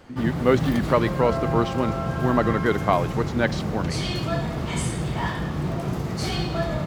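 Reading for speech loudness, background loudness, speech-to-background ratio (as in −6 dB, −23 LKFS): −24.0 LKFS, −27.0 LKFS, 3.0 dB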